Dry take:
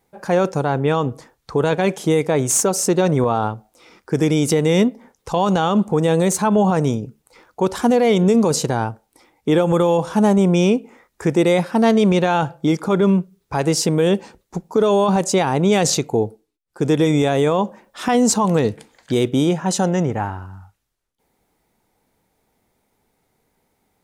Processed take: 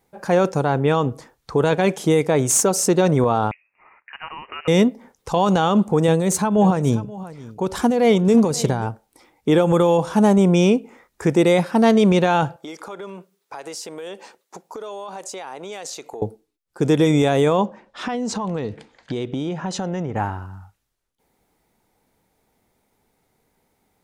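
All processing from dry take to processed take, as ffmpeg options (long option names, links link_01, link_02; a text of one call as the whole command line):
ffmpeg -i in.wav -filter_complex "[0:a]asettb=1/sr,asplit=3[link_01][link_02][link_03];[link_01]atrim=end=3.514[link_04];[link_02]atrim=start=3.51:end=4.68,asetpts=PTS-STARTPTS,afade=type=in:duration=0.004:curve=qsin,afade=type=out:start_time=1.166:duration=0.004:curve=qsin,highpass=frequency=890:width=0.5412,highpass=frequency=890:width=1.3066,lowpass=frequency=2800:width_type=q:width=0.5098,lowpass=frequency=2800:width_type=q:width=0.6013,lowpass=frequency=2800:width_type=q:width=0.9,lowpass=frequency=2800:width_type=q:width=2.563,afreqshift=-3300[link_05];[link_03]atrim=start=4.676[link_06];[link_04][link_05]acrossfade=duration=0.004:curve1=hsin:curve2=qsin[link_07];[link_07][link_06]acrossfade=duration=0.004:curve1=qsin:curve2=hsin,asettb=1/sr,asplit=3[link_08][link_09][link_10];[link_08]atrim=end=6.084[link_11];[link_09]atrim=start=6.08:end=8.87,asetpts=PTS-STARTPTS,afade=type=in:duration=0.004:curve=qsin,afade=type=out:start_time=2.786:duration=0.004:curve=qsin,lowshelf=frequency=180:gain=5.5,aecho=1:1:531:0.133,atrim=end_sample=123039,tremolo=f=3.5:d=0.52[link_12];[link_10]atrim=start=8.866[link_13];[link_11][link_12]acrossfade=duration=0.004:curve1=hsin:curve2=qsin[link_14];[link_14][link_13]acrossfade=duration=0.004:curve1=qsin:curve2=hsin,asettb=1/sr,asplit=3[link_15][link_16][link_17];[link_15]atrim=end=12.564[link_18];[link_16]atrim=start=12.56:end=16.22,asetpts=PTS-STARTPTS,afade=type=in:duration=0.004:curve=qsin,afade=type=out:start_time=3.656:duration=0.004:curve=qsin,highpass=510,acompressor=threshold=-32dB:ratio=4:attack=3.2:release=140:knee=1:detection=peak[link_19];[link_17]atrim=start=16.216[link_20];[link_18][link_19]acrossfade=duration=0.004:curve1=hsin:curve2=qsin[link_21];[link_21][link_20]acrossfade=duration=0.004:curve1=qsin:curve2=hsin,asettb=1/sr,asplit=3[link_22][link_23][link_24];[link_22]atrim=end=17.654[link_25];[link_23]atrim=start=17.65:end=20.16,asetpts=PTS-STARTPTS,afade=type=in:duration=0.004:curve=qsin,afade=type=out:start_time=2.506:duration=0.004:curve=qsin,lowpass=4800,acompressor=threshold=-22dB:ratio=5:attack=3.2:release=140:knee=1:detection=peak[link_26];[link_24]atrim=start=20.156[link_27];[link_25][link_26]acrossfade=duration=0.004:curve1=hsin:curve2=qsin[link_28];[link_28][link_27]acrossfade=duration=0.004:curve1=qsin:curve2=hsin" out.wav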